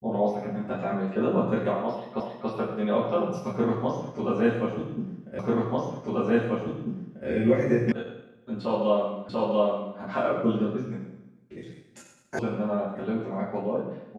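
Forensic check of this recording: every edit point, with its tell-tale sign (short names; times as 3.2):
2.2 repeat of the last 0.28 s
5.39 repeat of the last 1.89 s
7.92 sound cut off
9.29 repeat of the last 0.69 s
12.39 sound cut off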